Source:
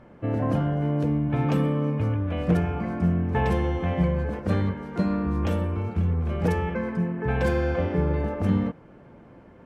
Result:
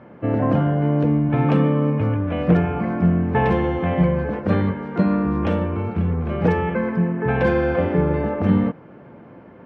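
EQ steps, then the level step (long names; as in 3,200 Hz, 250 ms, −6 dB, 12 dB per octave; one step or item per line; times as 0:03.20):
band-pass filter 110–2,900 Hz
+6.5 dB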